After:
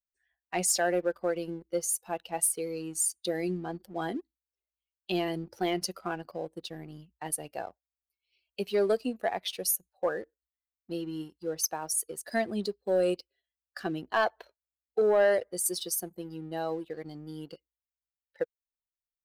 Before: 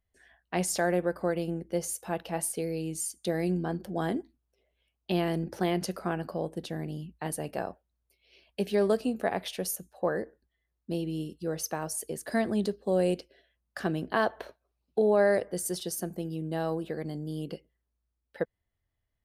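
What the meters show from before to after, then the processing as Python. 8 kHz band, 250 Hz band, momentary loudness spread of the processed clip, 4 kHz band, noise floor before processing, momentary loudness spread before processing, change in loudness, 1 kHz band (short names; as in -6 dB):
+5.0 dB, -4.0 dB, 14 LU, +2.5 dB, -82 dBFS, 10 LU, 0.0 dB, -0.5 dB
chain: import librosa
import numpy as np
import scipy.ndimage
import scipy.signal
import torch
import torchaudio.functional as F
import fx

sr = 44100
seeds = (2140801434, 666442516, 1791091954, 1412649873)

y = fx.bin_expand(x, sr, power=1.5)
y = fx.bass_treble(y, sr, bass_db=-11, treble_db=5)
y = fx.leveller(y, sr, passes=1)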